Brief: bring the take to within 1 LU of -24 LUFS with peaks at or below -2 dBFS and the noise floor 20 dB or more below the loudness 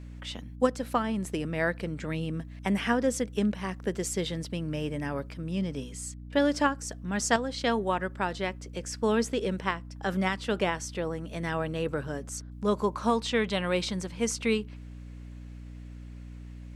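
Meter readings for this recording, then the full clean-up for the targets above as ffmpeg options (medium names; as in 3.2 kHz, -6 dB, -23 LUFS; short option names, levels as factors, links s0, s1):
hum 60 Hz; highest harmonic 300 Hz; hum level -40 dBFS; loudness -30.0 LUFS; peak level -9.5 dBFS; loudness target -24.0 LUFS
-> -af "bandreject=f=60:t=h:w=4,bandreject=f=120:t=h:w=4,bandreject=f=180:t=h:w=4,bandreject=f=240:t=h:w=4,bandreject=f=300:t=h:w=4"
-af "volume=2"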